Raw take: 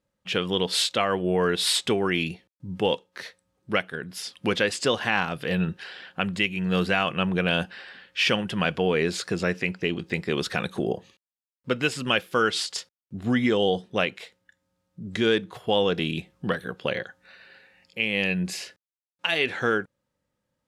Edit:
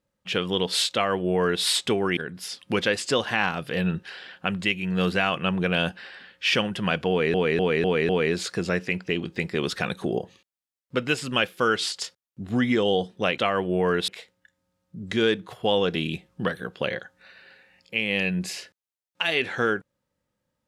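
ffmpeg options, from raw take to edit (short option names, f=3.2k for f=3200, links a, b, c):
-filter_complex "[0:a]asplit=8[a][b][c][d][e][f][g][h];[a]atrim=end=2.172[i];[b]atrim=start=3.908:end=9.082[j];[c]atrim=start=8.828:end=9.082[k];[d]atrim=start=8.828:end=9.082[l];[e]atrim=start=8.828:end=9.082[m];[f]atrim=start=8.828:end=14.122[n];[g]atrim=start=0.928:end=1.632[o];[h]atrim=start=14.118[p];[i][j]acrossfade=d=0.004:c1=hsin:c2=hsin[q];[q][k]acrossfade=d=0.004:c1=hsin:c2=hsin[r];[r][l]acrossfade=d=0.004:c1=hsin:c2=hsin[s];[s][m]acrossfade=d=0.004:c1=hsin:c2=hsin[t];[t][n]acrossfade=d=0.004:c1=hsin:c2=hsin[u];[u][o]acrossfade=d=0.004:c1=hsin:c2=hsin[v];[v][p]acrossfade=d=0.004:c1=hsin:c2=hsin"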